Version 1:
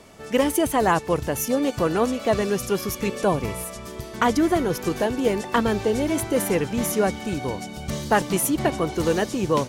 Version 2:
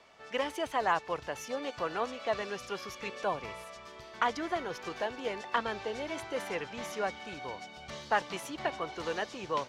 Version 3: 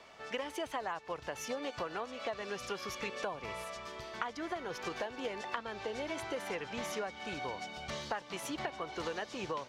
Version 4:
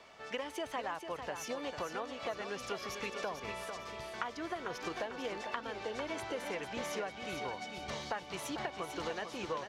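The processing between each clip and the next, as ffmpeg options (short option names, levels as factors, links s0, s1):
-filter_complex "[0:a]acrossover=split=570 5500:gain=0.178 1 0.0708[s0][s1][s2];[s0][s1][s2]amix=inputs=3:normalize=0,volume=0.473"
-af "acompressor=threshold=0.0126:ratio=12,volume=1.5"
-af "aecho=1:1:448|896|1344|1792:0.398|0.135|0.046|0.0156,volume=0.891"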